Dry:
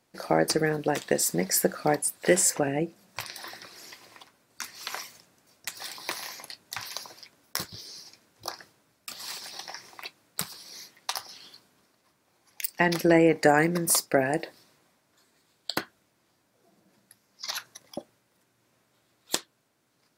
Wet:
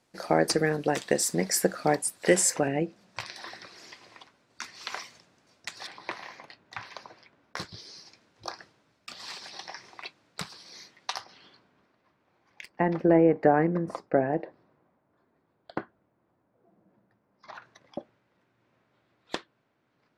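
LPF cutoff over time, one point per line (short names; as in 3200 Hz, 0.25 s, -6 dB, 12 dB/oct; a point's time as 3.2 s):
10000 Hz
from 2.68 s 5300 Hz
from 5.87 s 2400 Hz
from 7.57 s 4800 Hz
from 11.24 s 2500 Hz
from 12.68 s 1100 Hz
from 17.62 s 2600 Hz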